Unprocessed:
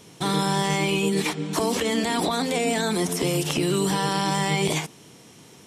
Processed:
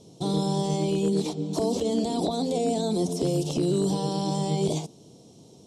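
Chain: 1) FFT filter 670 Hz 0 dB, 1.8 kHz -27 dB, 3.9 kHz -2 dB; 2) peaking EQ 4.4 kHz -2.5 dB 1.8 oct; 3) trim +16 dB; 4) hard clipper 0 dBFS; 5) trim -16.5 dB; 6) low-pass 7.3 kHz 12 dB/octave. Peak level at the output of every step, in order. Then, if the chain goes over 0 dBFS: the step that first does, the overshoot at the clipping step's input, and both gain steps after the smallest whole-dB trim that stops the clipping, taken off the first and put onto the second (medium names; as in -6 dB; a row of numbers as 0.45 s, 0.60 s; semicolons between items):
-12.5 dBFS, -13.0 dBFS, +3.0 dBFS, 0.0 dBFS, -16.5 dBFS, -16.5 dBFS; step 3, 3.0 dB; step 3 +13 dB, step 5 -13.5 dB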